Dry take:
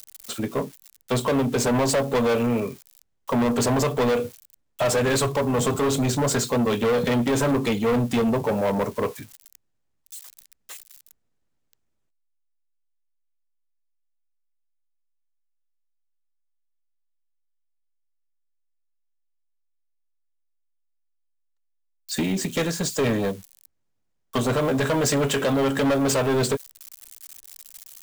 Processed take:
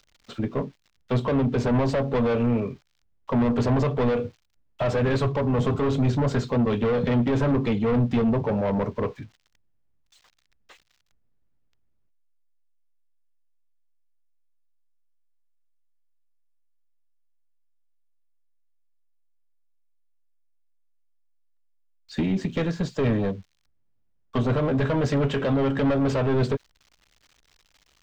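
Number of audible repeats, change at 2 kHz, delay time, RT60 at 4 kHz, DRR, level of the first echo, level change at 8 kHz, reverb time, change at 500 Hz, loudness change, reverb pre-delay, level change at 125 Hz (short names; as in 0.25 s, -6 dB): none, -5.0 dB, none, none, none, none, under -20 dB, none, -2.5 dB, -1.0 dB, none, +3.0 dB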